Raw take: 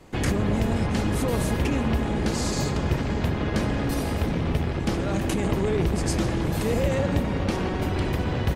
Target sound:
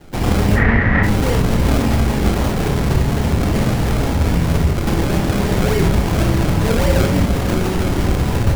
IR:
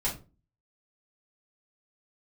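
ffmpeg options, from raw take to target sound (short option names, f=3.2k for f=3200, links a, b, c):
-filter_complex "[0:a]acrusher=samples=33:mix=1:aa=0.000001:lfo=1:lforange=33:lforate=3.6,asplit=3[a][b][c];[a]afade=t=out:st=0.55:d=0.02[d];[b]lowpass=f=1.9k:t=q:w=9.7,afade=t=in:st=0.55:d=0.02,afade=t=out:st=1.02:d=0.02[e];[c]afade=t=in:st=1.02:d=0.02[f];[d][e][f]amix=inputs=3:normalize=0,asplit=2[g][h];[1:a]atrim=start_sample=2205,adelay=24[i];[h][i]afir=irnorm=-1:irlink=0,volume=-9dB[j];[g][j]amix=inputs=2:normalize=0,volume=4.5dB"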